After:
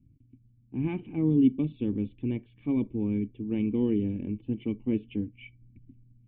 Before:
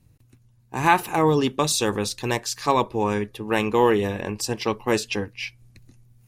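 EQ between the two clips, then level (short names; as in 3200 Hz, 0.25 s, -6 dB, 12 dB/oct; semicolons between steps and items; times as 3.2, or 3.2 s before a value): vocal tract filter i; air absorption 340 m; low shelf 290 Hz +10 dB; 0.0 dB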